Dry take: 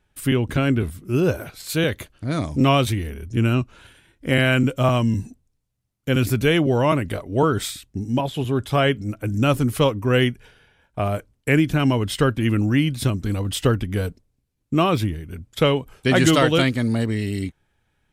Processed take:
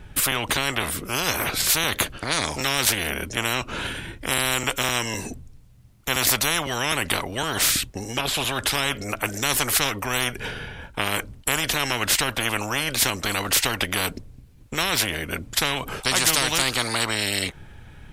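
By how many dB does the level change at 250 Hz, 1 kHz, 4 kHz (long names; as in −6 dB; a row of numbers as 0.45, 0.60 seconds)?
−11.5, −1.0, +6.0 decibels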